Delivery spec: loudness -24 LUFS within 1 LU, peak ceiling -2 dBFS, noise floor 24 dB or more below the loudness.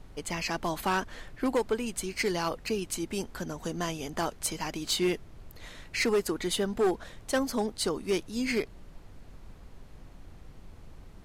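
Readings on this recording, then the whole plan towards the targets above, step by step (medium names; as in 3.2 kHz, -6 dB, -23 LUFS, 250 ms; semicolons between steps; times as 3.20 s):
clipped samples 0.8%; clipping level -21.0 dBFS; noise floor -51 dBFS; noise floor target -55 dBFS; loudness -31.0 LUFS; peak level -21.0 dBFS; loudness target -24.0 LUFS
-> clip repair -21 dBFS; noise print and reduce 6 dB; trim +7 dB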